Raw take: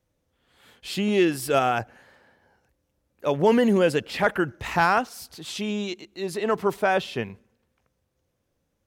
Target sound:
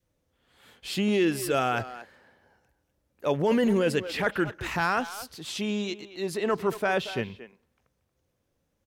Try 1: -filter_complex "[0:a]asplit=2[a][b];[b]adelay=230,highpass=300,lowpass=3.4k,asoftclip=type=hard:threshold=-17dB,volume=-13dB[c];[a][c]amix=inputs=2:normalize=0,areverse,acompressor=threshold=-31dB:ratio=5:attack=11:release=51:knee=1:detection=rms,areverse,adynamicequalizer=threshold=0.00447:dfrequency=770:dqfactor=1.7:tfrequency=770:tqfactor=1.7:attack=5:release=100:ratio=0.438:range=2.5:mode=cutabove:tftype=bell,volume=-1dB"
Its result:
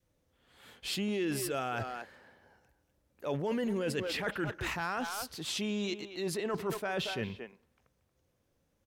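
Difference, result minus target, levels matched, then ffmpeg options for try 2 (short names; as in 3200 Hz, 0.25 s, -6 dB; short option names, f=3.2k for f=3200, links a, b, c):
compressor: peak gain reduction +9.5 dB
-filter_complex "[0:a]asplit=2[a][b];[b]adelay=230,highpass=300,lowpass=3.4k,asoftclip=type=hard:threshold=-17dB,volume=-13dB[c];[a][c]amix=inputs=2:normalize=0,areverse,acompressor=threshold=-19dB:ratio=5:attack=11:release=51:knee=1:detection=rms,areverse,adynamicequalizer=threshold=0.00447:dfrequency=770:dqfactor=1.7:tfrequency=770:tqfactor=1.7:attack=5:release=100:ratio=0.438:range=2.5:mode=cutabove:tftype=bell,volume=-1dB"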